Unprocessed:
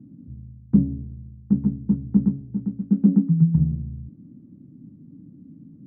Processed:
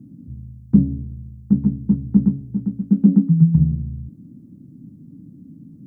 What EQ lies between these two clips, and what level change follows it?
tone controls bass +3 dB, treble +13 dB; +1.5 dB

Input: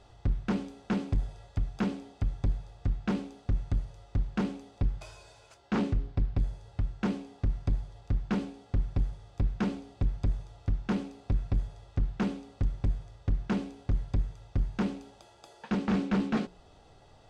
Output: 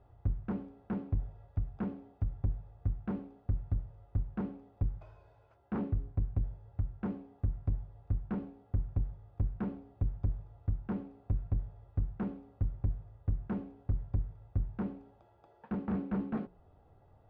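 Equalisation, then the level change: LPF 1300 Hz 12 dB/oct; bell 89 Hz +7 dB 0.97 oct; -7.0 dB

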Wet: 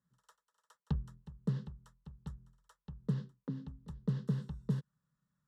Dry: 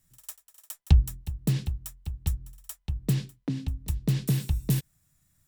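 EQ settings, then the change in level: HPF 96 Hz 12 dB/oct; LPF 2300 Hz 12 dB/oct; fixed phaser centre 470 Hz, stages 8; -4.5 dB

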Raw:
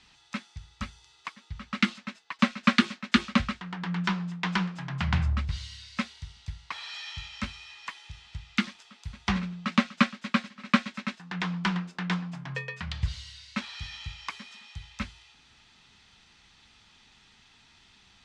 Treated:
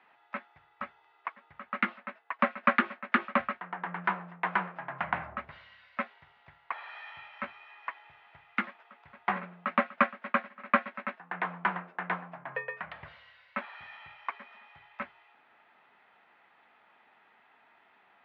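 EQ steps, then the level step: HPF 450 Hz 12 dB/oct; LPF 2000 Hz 24 dB/oct; bell 640 Hz +7 dB 0.68 oct; +2.0 dB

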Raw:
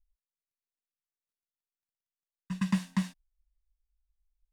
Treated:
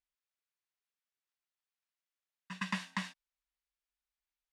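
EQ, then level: band-pass 2000 Hz, Q 0.6; +4.0 dB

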